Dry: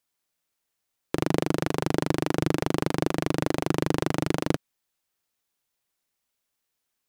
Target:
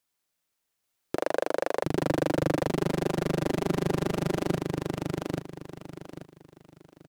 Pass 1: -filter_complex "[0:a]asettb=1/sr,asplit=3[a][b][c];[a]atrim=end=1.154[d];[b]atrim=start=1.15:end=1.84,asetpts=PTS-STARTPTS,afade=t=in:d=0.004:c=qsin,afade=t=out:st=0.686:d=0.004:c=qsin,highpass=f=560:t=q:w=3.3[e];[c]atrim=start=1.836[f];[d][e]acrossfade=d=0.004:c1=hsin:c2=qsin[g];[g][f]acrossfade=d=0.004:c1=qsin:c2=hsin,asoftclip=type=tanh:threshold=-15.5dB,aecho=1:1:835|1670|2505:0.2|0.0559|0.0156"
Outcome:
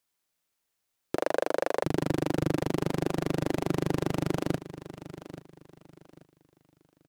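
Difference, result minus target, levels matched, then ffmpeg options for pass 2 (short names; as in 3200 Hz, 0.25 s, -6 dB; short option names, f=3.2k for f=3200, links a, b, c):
echo-to-direct -11.5 dB
-filter_complex "[0:a]asettb=1/sr,asplit=3[a][b][c];[a]atrim=end=1.154[d];[b]atrim=start=1.15:end=1.84,asetpts=PTS-STARTPTS,afade=t=in:d=0.004:c=qsin,afade=t=out:st=0.686:d=0.004:c=qsin,highpass=f=560:t=q:w=3.3[e];[c]atrim=start=1.836[f];[d][e]acrossfade=d=0.004:c1=hsin:c2=qsin[g];[g][f]acrossfade=d=0.004:c1=qsin:c2=hsin,asoftclip=type=tanh:threshold=-15.5dB,aecho=1:1:835|1670|2505|3340:0.75|0.21|0.0588|0.0165"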